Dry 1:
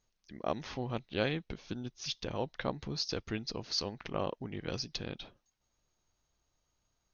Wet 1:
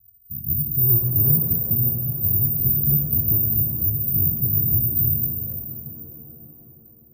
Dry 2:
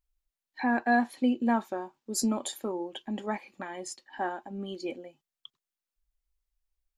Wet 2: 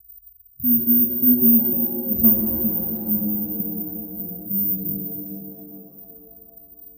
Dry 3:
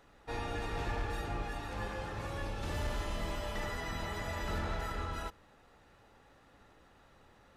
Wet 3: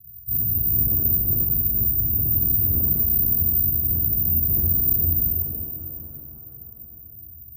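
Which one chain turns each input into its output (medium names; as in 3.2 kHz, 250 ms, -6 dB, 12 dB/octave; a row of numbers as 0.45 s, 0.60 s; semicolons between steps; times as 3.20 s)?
median filter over 15 samples; inverse Chebyshev band-stop 550–7000 Hz, stop band 70 dB; distance through air 380 m; careless resampling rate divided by 3×, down filtered, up zero stuff; hard clipper -34 dBFS; high-pass 73 Hz 12 dB/octave; pitch-shifted reverb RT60 3.4 s, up +7 st, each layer -8 dB, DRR 1.5 dB; normalise loudness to -18 LUFS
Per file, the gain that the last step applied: +22.5 dB, +28.0 dB, +19.0 dB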